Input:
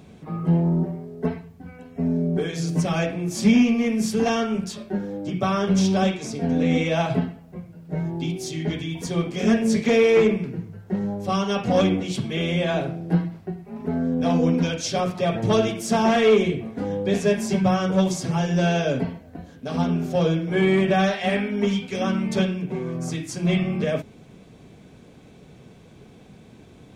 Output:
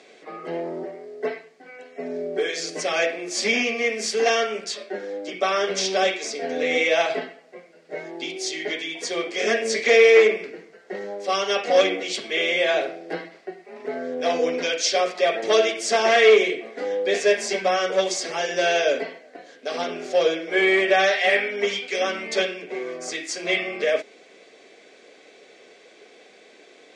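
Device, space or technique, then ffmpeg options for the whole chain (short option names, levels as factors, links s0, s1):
phone speaker on a table: -af "highpass=f=410:w=0.5412,highpass=f=410:w=1.3066,equalizer=f=920:t=q:w=4:g=-10,equalizer=f=1300:t=q:w=4:g=-3,equalizer=f=2000:t=q:w=4:g=7,equalizer=f=4600:t=q:w=4:g=4,lowpass=f=8100:w=0.5412,lowpass=f=8100:w=1.3066,volume=1.78"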